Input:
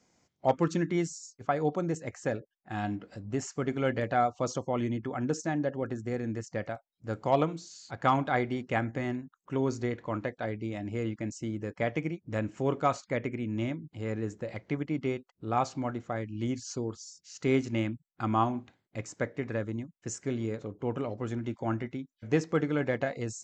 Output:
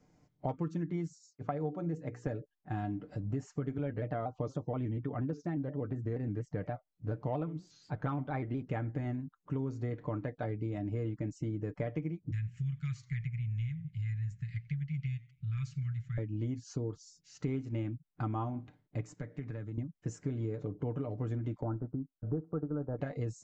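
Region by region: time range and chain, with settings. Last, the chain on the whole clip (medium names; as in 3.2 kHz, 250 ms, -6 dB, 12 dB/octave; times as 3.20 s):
1.15–2.27 s: high-pass 110 Hz + distance through air 60 m + hum notches 60/120/180/240/300/360/420/480/540 Hz
3.78–8.62 s: distance through air 87 m + vibrato with a chosen wave square 4.2 Hz, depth 100 cents
12.31–16.18 s: elliptic band-stop 140–1900 Hz, stop band 50 dB + modulated delay 89 ms, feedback 39%, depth 132 cents, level -23.5 dB
19.12–19.78 s: high-pass 94 Hz + peaking EQ 570 Hz -8 dB 2.3 oct + compression 2.5:1, threshold -44 dBFS
21.61–22.99 s: elliptic low-pass 1.4 kHz + transient shaper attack -2 dB, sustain -6 dB
whole clip: tilt EQ -3 dB/octave; comb 6.7 ms, depth 50%; compression, threshold -30 dBFS; trim -2.5 dB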